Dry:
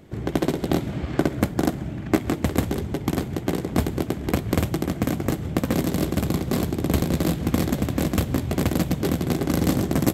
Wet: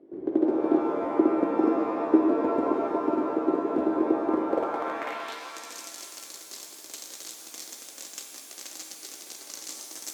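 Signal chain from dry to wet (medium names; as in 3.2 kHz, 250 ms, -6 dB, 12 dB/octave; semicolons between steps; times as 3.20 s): resonant low shelf 220 Hz -12.5 dB, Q 1.5; band-pass sweep 330 Hz -> 6.2 kHz, 4.34–5.52 s; pitch-shifted reverb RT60 2 s, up +7 st, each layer -2 dB, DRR 3.5 dB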